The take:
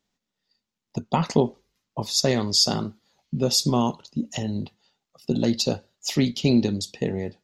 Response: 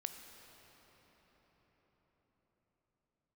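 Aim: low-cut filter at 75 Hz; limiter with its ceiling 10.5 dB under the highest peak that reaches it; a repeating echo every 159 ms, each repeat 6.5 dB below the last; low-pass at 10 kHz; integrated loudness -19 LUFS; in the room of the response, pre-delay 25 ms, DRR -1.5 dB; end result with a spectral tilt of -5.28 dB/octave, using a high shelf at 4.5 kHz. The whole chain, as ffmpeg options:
-filter_complex "[0:a]highpass=75,lowpass=10000,highshelf=f=4500:g=-7.5,alimiter=limit=0.158:level=0:latency=1,aecho=1:1:159|318|477|636|795|954:0.473|0.222|0.105|0.0491|0.0231|0.0109,asplit=2[s0][s1];[1:a]atrim=start_sample=2205,adelay=25[s2];[s1][s2]afir=irnorm=-1:irlink=0,volume=1.5[s3];[s0][s3]amix=inputs=2:normalize=0,volume=1.68"

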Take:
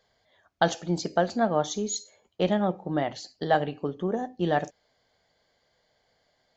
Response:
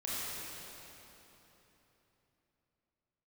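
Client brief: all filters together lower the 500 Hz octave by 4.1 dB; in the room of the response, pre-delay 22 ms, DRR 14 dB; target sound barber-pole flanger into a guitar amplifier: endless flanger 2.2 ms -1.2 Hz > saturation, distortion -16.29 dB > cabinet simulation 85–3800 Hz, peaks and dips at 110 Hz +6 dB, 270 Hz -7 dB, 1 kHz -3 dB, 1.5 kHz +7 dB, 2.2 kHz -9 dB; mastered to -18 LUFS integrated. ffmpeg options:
-filter_complex "[0:a]equalizer=f=500:t=o:g=-5,asplit=2[s0][s1];[1:a]atrim=start_sample=2205,adelay=22[s2];[s1][s2]afir=irnorm=-1:irlink=0,volume=0.119[s3];[s0][s3]amix=inputs=2:normalize=0,asplit=2[s4][s5];[s5]adelay=2.2,afreqshift=-1.2[s6];[s4][s6]amix=inputs=2:normalize=1,asoftclip=threshold=0.0794,highpass=85,equalizer=f=110:t=q:w=4:g=6,equalizer=f=270:t=q:w=4:g=-7,equalizer=f=1000:t=q:w=4:g=-3,equalizer=f=1500:t=q:w=4:g=7,equalizer=f=2200:t=q:w=4:g=-9,lowpass=f=3800:w=0.5412,lowpass=f=3800:w=1.3066,volume=7.08"

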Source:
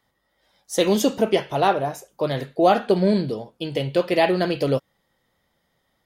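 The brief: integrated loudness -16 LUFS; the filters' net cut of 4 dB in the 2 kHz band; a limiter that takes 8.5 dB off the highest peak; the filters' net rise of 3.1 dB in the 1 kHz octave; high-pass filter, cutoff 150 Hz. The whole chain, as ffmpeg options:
-af "highpass=150,equalizer=f=1000:t=o:g=6,equalizer=f=2000:t=o:g=-7.5,volume=2.51,alimiter=limit=0.631:level=0:latency=1"

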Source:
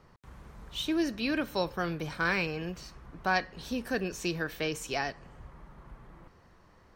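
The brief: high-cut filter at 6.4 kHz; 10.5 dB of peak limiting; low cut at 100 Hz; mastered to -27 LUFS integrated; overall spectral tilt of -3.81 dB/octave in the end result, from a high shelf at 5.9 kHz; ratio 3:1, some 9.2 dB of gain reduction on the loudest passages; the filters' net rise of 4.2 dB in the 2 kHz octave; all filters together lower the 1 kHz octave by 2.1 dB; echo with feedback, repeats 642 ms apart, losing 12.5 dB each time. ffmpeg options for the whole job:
-af "highpass=100,lowpass=6400,equalizer=f=1000:t=o:g=-5,equalizer=f=2000:t=o:g=7,highshelf=f=5900:g=4,acompressor=threshold=0.02:ratio=3,alimiter=level_in=2.11:limit=0.0631:level=0:latency=1,volume=0.473,aecho=1:1:642|1284|1926:0.237|0.0569|0.0137,volume=5.01"

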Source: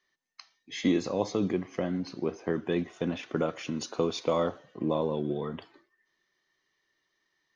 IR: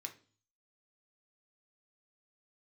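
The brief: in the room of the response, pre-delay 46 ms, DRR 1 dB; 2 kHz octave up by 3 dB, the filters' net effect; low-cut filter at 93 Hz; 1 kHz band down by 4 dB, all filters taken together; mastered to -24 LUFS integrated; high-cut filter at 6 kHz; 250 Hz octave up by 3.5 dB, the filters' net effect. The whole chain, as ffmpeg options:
-filter_complex "[0:a]highpass=93,lowpass=6000,equalizer=f=250:t=o:g=5,equalizer=f=1000:t=o:g=-7,equalizer=f=2000:t=o:g=5.5,asplit=2[s0][s1];[1:a]atrim=start_sample=2205,adelay=46[s2];[s1][s2]afir=irnorm=-1:irlink=0,volume=1.26[s3];[s0][s3]amix=inputs=2:normalize=0,volume=1.58"

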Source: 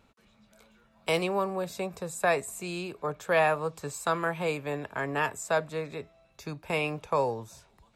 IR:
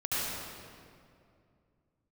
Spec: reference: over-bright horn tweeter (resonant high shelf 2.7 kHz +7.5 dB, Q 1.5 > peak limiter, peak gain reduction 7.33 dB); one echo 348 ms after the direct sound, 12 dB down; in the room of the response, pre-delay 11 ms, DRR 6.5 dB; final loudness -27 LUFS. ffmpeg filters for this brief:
-filter_complex "[0:a]aecho=1:1:348:0.251,asplit=2[s0][s1];[1:a]atrim=start_sample=2205,adelay=11[s2];[s1][s2]afir=irnorm=-1:irlink=0,volume=0.178[s3];[s0][s3]amix=inputs=2:normalize=0,highshelf=f=2700:t=q:w=1.5:g=7.5,volume=1.5,alimiter=limit=0.158:level=0:latency=1"

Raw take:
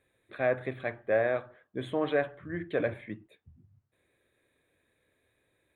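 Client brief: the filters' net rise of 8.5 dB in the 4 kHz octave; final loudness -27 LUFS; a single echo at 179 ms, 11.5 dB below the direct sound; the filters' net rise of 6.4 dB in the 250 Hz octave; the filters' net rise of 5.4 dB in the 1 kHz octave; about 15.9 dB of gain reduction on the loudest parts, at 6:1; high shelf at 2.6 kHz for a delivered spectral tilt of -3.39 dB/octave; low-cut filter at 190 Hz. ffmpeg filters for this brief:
-af "highpass=190,equalizer=f=250:t=o:g=9,equalizer=f=1000:t=o:g=6,highshelf=f=2600:g=8,equalizer=f=4000:t=o:g=4,acompressor=threshold=0.0158:ratio=6,aecho=1:1:179:0.266,volume=5.01"

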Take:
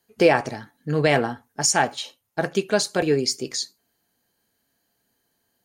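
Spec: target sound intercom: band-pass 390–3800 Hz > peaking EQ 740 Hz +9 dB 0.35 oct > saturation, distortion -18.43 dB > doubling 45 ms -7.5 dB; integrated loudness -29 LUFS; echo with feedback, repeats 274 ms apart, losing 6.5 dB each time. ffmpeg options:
-filter_complex "[0:a]highpass=390,lowpass=3800,equalizer=f=740:t=o:w=0.35:g=9,aecho=1:1:274|548|822|1096|1370|1644:0.473|0.222|0.105|0.0491|0.0231|0.0109,asoftclip=threshold=0.335,asplit=2[s0][s1];[s1]adelay=45,volume=0.422[s2];[s0][s2]amix=inputs=2:normalize=0,volume=0.447"

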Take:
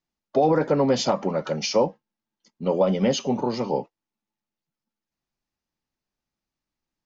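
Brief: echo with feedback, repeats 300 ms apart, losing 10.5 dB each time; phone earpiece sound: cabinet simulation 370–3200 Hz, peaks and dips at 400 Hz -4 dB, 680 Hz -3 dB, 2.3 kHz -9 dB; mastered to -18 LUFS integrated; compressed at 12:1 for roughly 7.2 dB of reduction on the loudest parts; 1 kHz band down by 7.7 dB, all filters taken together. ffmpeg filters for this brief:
-af "equalizer=f=1000:t=o:g=-8.5,acompressor=threshold=0.0631:ratio=12,highpass=370,equalizer=f=400:t=q:w=4:g=-4,equalizer=f=680:t=q:w=4:g=-3,equalizer=f=2300:t=q:w=4:g=-9,lowpass=f=3200:w=0.5412,lowpass=f=3200:w=1.3066,aecho=1:1:300|600|900:0.299|0.0896|0.0269,volume=7.08"

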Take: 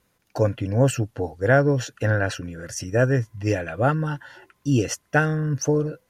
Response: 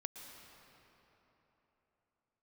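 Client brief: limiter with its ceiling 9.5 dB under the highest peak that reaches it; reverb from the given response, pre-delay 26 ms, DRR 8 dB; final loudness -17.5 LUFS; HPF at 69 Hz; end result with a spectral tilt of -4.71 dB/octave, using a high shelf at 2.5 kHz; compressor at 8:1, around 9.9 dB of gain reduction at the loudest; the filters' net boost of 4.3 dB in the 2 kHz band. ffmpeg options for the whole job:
-filter_complex "[0:a]highpass=69,equalizer=f=2000:t=o:g=3.5,highshelf=f=2500:g=6.5,acompressor=threshold=0.0891:ratio=8,alimiter=limit=0.119:level=0:latency=1,asplit=2[s0][s1];[1:a]atrim=start_sample=2205,adelay=26[s2];[s1][s2]afir=irnorm=-1:irlink=0,volume=0.531[s3];[s0][s3]amix=inputs=2:normalize=0,volume=3.76"

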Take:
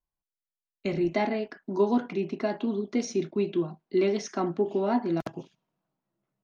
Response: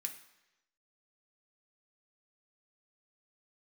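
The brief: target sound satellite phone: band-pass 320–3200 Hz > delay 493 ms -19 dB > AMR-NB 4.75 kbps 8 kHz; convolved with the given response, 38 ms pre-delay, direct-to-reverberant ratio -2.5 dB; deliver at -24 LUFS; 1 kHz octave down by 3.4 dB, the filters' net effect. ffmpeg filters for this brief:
-filter_complex "[0:a]equalizer=f=1000:t=o:g=-4.5,asplit=2[s0][s1];[1:a]atrim=start_sample=2205,adelay=38[s2];[s1][s2]afir=irnorm=-1:irlink=0,volume=1.68[s3];[s0][s3]amix=inputs=2:normalize=0,highpass=320,lowpass=3200,aecho=1:1:493:0.112,volume=2.24" -ar 8000 -c:a libopencore_amrnb -b:a 4750

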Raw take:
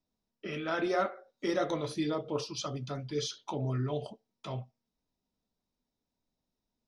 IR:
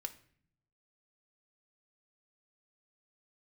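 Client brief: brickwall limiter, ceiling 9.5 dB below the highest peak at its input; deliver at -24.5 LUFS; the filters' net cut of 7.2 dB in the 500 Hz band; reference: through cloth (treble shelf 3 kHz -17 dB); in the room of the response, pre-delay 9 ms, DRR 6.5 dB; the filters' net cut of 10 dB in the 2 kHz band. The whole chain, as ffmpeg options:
-filter_complex "[0:a]equalizer=f=500:t=o:g=-8.5,equalizer=f=2000:t=o:g=-7.5,alimiter=level_in=2.51:limit=0.0631:level=0:latency=1,volume=0.398,asplit=2[s0][s1];[1:a]atrim=start_sample=2205,adelay=9[s2];[s1][s2]afir=irnorm=-1:irlink=0,volume=0.631[s3];[s0][s3]amix=inputs=2:normalize=0,highshelf=f=3000:g=-17,volume=7.5"

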